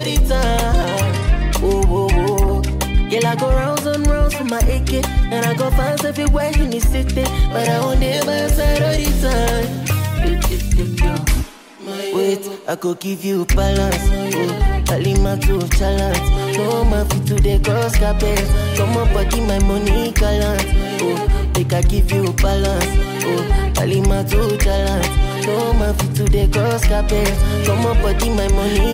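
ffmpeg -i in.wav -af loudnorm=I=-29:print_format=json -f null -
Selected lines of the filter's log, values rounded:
"input_i" : "-17.5",
"input_tp" : "-5.1",
"input_lra" : "2.0",
"input_thresh" : "-27.5",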